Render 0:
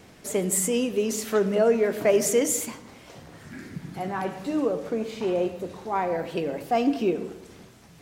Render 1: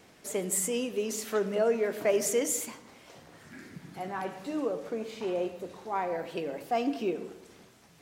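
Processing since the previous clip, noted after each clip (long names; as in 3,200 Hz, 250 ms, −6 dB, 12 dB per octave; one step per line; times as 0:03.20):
low-shelf EQ 190 Hz −9 dB
level −4.5 dB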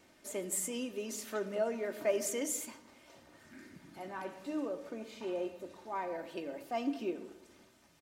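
comb filter 3.3 ms, depth 48%
level −7 dB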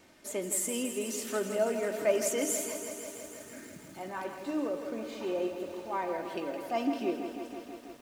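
feedback echo at a low word length 163 ms, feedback 80%, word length 10 bits, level −9 dB
level +4 dB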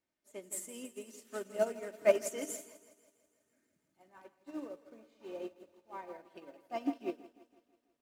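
expander for the loud parts 2.5 to 1, over −44 dBFS
level +3 dB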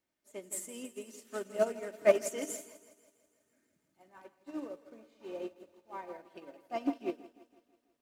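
highs frequency-modulated by the lows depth 0.13 ms
level +2 dB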